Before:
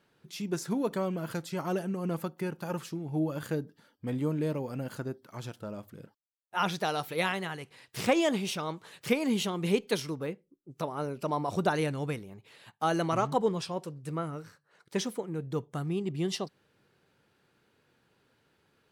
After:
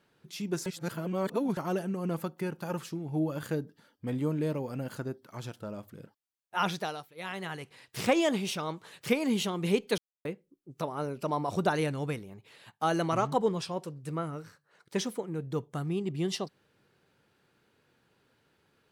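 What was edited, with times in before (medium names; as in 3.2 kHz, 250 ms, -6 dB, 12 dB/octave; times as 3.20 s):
0.66–1.57 s: reverse
6.70–7.54 s: dip -20 dB, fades 0.39 s
9.98–10.25 s: mute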